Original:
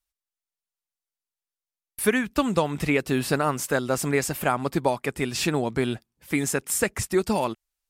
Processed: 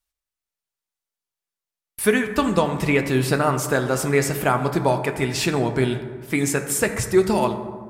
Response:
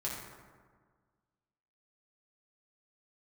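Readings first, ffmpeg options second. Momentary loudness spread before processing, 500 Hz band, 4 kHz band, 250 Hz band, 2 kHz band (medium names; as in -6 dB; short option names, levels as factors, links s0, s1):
4 LU, +4.5 dB, +3.0 dB, +3.5 dB, +3.5 dB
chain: -filter_complex "[0:a]asplit=2[s0][s1];[1:a]atrim=start_sample=2205,highshelf=f=10000:g=-7[s2];[s1][s2]afir=irnorm=-1:irlink=0,volume=0.562[s3];[s0][s3]amix=inputs=2:normalize=0"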